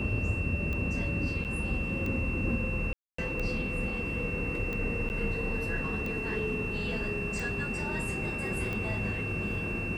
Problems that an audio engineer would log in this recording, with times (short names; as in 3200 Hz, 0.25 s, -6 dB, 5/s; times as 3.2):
tick 45 rpm -23 dBFS
tone 2700 Hz -35 dBFS
1.44–1.45 gap 8.3 ms
2.93–3.18 gap 0.254 s
5.09–5.1 gap 9.4 ms